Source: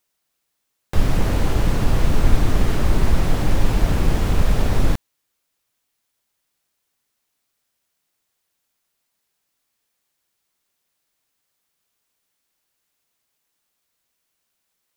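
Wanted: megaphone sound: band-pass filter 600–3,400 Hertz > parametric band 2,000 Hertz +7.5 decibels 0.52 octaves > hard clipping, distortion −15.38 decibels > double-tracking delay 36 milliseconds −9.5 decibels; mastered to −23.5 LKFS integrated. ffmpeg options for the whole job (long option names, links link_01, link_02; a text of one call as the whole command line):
ffmpeg -i in.wav -filter_complex "[0:a]highpass=600,lowpass=3400,equalizer=frequency=2000:width_type=o:width=0.52:gain=7.5,asoftclip=type=hard:threshold=-26.5dB,asplit=2[link_01][link_02];[link_02]adelay=36,volume=-9.5dB[link_03];[link_01][link_03]amix=inputs=2:normalize=0,volume=7dB" out.wav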